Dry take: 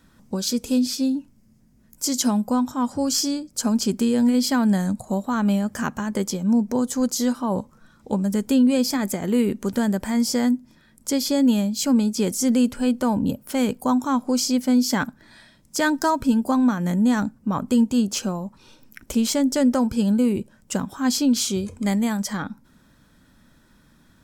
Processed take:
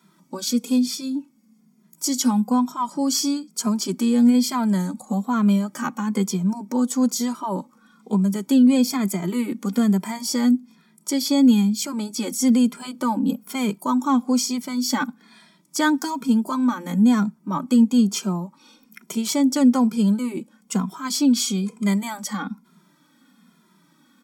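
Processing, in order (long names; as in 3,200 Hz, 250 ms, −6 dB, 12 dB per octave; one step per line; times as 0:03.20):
elliptic high-pass filter 170 Hz
comb filter 0.9 ms, depth 46%
barber-pole flanger 2.5 ms −1.1 Hz
level +3 dB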